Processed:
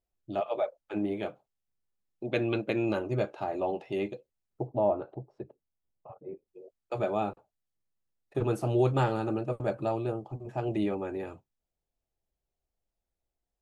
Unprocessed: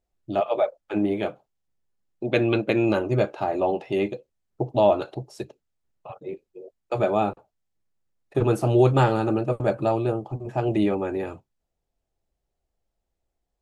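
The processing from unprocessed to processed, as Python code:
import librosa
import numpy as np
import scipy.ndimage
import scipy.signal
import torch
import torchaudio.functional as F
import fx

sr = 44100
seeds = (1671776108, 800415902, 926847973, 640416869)

y = fx.lowpass(x, sr, hz=1100.0, slope=12, at=(4.67, 6.48))
y = y * librosa.db_to_amplitude(-7.5)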